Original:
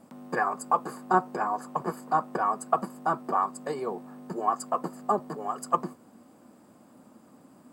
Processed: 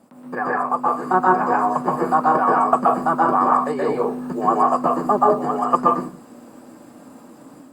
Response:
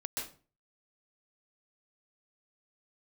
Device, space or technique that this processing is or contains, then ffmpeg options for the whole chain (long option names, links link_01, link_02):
far-field microphone of a smart speaker: -filter_complex "[0:a]acrossover=split=2900[link_01][link_02];[link_02]acompressor=threshold=-59dB:ratio=4:attack=1:release=60[link_03];[link_01][link_03]amix=inputs=2:normalize=0[link_04];[1:a]atrim=start_sample=2205[link_05];[link_04][link_05]afir=irnorm=-1:irlink=0,highpass=frequency=130:poles=1,dynaudnorm=framelen=760:gausssize=3:maxgain=6dB,volume=4.5dB" -ar 48000 -c:a libopus -b:a 48k